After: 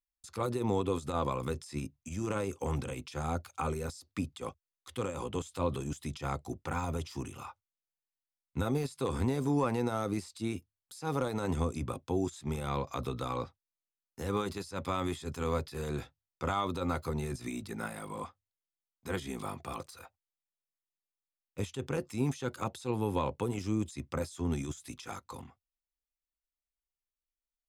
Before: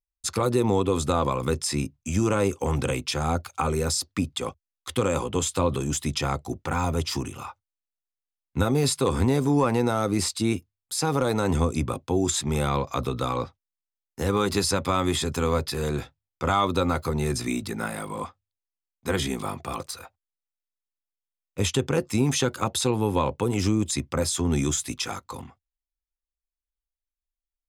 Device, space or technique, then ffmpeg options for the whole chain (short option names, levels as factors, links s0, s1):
de-esser from a sidechain: -filter_complex "[0:a]asplit=2[s0][s1];[s1]highpass=f=4000:w=0.5412,highpass=f=4000:w=1.3066,apad=whole_len=1220878[s2];[s0][s2]sidechaincompress=threshold=0.0141:ratio=16:attack=1:release=66,volume=0.422"